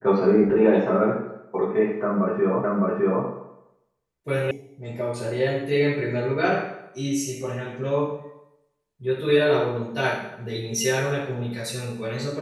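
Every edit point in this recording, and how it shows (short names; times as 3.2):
2.64 repeat of the last 0.61 s
4.51 sound cut off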